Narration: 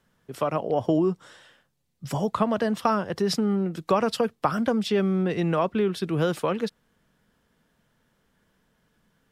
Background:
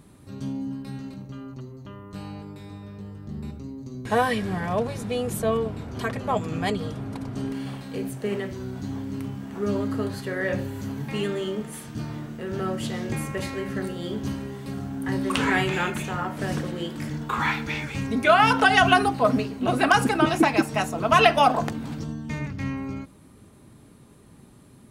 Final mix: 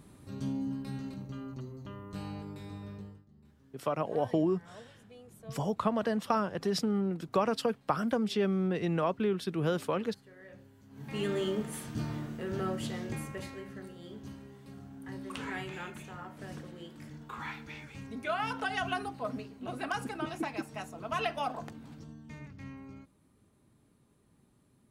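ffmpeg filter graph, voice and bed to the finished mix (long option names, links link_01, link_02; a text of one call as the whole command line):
ffmpeg -i stem1.wav -i stem2.wav -filter_complex "[0:a]adelay=3450,volume=-6dB[link_01];[1:a]volume=19.5dB,afade=type=out:start_time=2.92:duration=0.33:silence=0.0749894,afade=type=in:start_time=10.9:duration=0.48:silence=0.0707946,afade=type=out:start_time=12.09:duration=1.67:silence=0.223872[link_02];[link_01][link_02]amix=inputs=2:normalize=0" out.wav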